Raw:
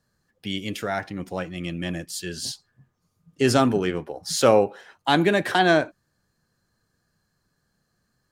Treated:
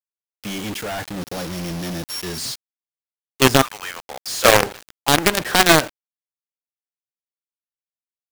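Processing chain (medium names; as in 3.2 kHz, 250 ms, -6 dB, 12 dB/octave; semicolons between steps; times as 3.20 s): 1.21–2.38 s: sorted samples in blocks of 8 samples; 3.61–4.61 s: high-pass 1.1 kHz -> 430 Hz 24 dB/octave; companded quantiser 2-bit; trim -1 dB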